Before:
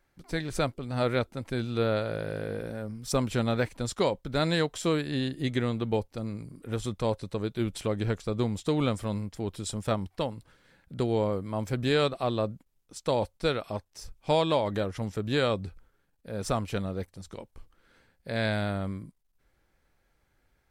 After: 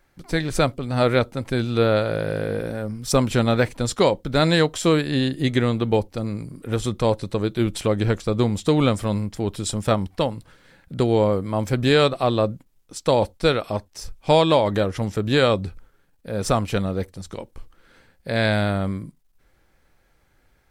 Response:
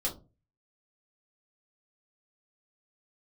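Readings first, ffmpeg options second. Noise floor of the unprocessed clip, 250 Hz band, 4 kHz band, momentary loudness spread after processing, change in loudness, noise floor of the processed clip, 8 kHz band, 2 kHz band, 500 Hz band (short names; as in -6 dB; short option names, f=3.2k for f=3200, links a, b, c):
-72 dBFS, +8.0 dB, +8.5 dB, 11 LU, +8.5 dB, -62 dBFS, +8.5 dB, +8.0 dB, +8.5 dB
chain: -filter_complex "[0:a]asplit=2[a][b];[1:a]atrim=start_sample=2205,atrim=end_sample=4410[c];[b][c]afir=irnorm=-1:irlink=0,volume=-26dB[d];[a][d]amix=inputs=2:normalize=0,volume=8dB"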